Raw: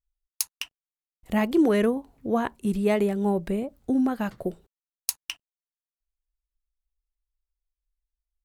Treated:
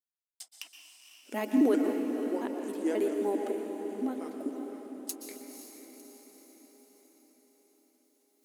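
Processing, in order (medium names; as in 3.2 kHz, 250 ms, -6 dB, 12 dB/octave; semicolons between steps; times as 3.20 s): pitch shift switched off and on -4.5 st, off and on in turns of 134 ms; peaking EQ 1.5 kHz -8 dB 2.8 oct; reverse; upward compressor, threshold -44 dBFS; reverse; tremolo saw up 0.57 Hz, depth 70%; brick-wall FIR high-pass 230 Hz; echo that smears into a reverb 520 ms, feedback 55%, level -8 dB; reverberation RT60 1.4 s, pre-delay 113 ms, DRR 5.5 dB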